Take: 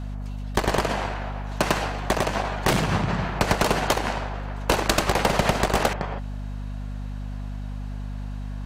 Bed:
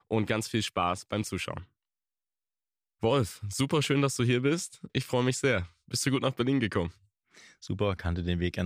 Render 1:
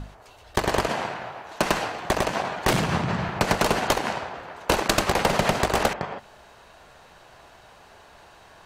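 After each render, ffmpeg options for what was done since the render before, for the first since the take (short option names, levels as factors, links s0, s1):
-af "bandreject=f=50:t=h:w=6,bandreject=f=100:t=h:w=6,bandreject=f=150:t=h:w=6,bandreject=f=200:t=h:w=6,bandreject=f=250:t=h:w=6"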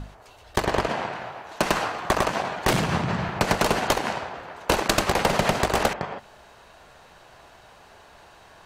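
-filter_complex "[0:a]asettb=1/sr,asplit=3[s0][s1][s2];[s0]atrim=end=0.654[s3];[s1]atrim=start=0.65:end=1.13,asetpts=PTS-STARTPTS,afade=t=in:d=0.004:c=qsin,afade=t=out:st=0.476:d=0.004:c=qsin,highshelf=f=6900:g=-11.5[s4];[s2]atrim=start=1.126[s5];[s3][s4]acrossfade=d=0.004:c1=hsin:c2=qsin[s6];[s6][s5]acrossfade=d=0.004:c1=qsin:c2=hsin,asettb=1/sr,asplit=3[s7][s8][s9];[s7]atrim=end=1.754[s10];[s8]atrim=start=1.75:end=2.32,asetpts=PTS-STARTPTS,afade=t=in:d=0.004:c=qsin,afade=t=out:st=0.566:d=0.004:c=qsin,equalizer=f=1200:t=o:w=0.63:g=5.5[s11];[s9]atrim=start=2.316[s12];[s10][s11]acrossfade=d=0.004:c1=hsin:c2=qsin[s13];[s13][s12]acrossfade=d=0.004:c1=qsin:c2=hsin"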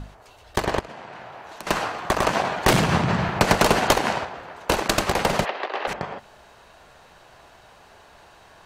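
-filter_complex "[0:a]asettb=1/sr,asplit=3[s0][s1][s2];[s0]atrim=end=0.794[s3];[s1]atrim=start=0.79:end=1.67,asetpts=PTS-STARTPTS,afade=t=in:d=0.004:c=qsin,afade=t=out:st=0.876:d=0.004:c=qsin,acompressor=threshold=0.0178:ratio=8:attack=3.2:release=140:knee=1:detection=peak[s4];[s2]atrim=start=1.666[s5];[s3][s4]acrossfade=d=0.004:c1=hsin:c2=qsin[s6];[s6][s5]acrossfade=d=0.004:c1=qsin:c2=hsin,asplit=3[s7][s8][s9];[s7]afade=t=out:st=5.44:d=0.02[s10];[s8]highpass=f=420:w=0.5412,highpass=f=420:w=1.3066,equalizer=f=460:t=q:w=4:g=-5,equalizer=f=660:t=q:w=4:g=-6,equalizer=f=940:t=q:w=4:g=-4,equalizer=f=1400:t=q:w=4:g=-6,equalizer=f=2300:t=q:w=4:g=-4,equalizer=f=3300:t=q:w=4:g=-3,lowpass=f=3400:w=0.5412,lowpass=f=3400:w=1.3066,afade=t=in:st=5.44:d=0.02,afade=t=out:st=5.87:d=0.02[s11];[s9]afade=t=in:st=5.87:d=0.02[s12];[s10][s11][s12]amix=inputs=3:normalize=0,asplit=3[s13][s14][s15];[s13]atrim=end=2.232[s16];[s14]atrim=start=2.228:end=4.252,asetpts=PTS-STARTPTS,volume=1.58[s17];[s15]atrim=start=4.248[s18];[s16][s17]acrossfade=d=0.004:c1=hsin:c2=hsin[s19];[s19][s18]acrossfade=d=0.004:c1=hsin:c2=hsin"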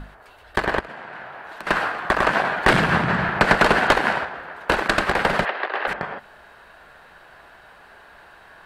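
-filter_complex "[0:a]acrossover=split=8800[s0][s1];[s1]acompressor=threshold=0.00251:ratio=4:attack=1:release=60[s2];[s0][s2]amix=inputs=2:normalize=0,equalizer=f=100:t=o:w=0.67:g=-6,equalizer=f=1600:t=o:w=0.67:g=9,equalizer=f=6300:t=o:w=0.67:g=-10"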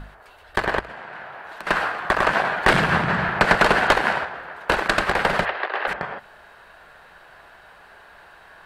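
-af "equalizer=f=260:t=o:w=0.95:g=-3.5,bandreject=f=60:t=h:w=6,bandreject=f=120:t=h:w=6"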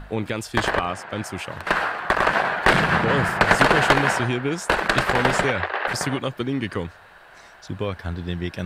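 -filter_complex "[1:a]volume=1.19[s0];[0:a][s0]amix=inputs=2:normalize=0"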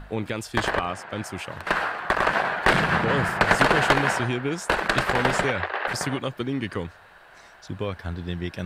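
-af "volume=0.75"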